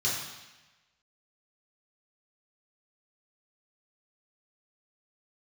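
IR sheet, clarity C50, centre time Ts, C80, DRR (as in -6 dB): 2.0 dB, 63 ms, 4.0 dB, -6.5 dB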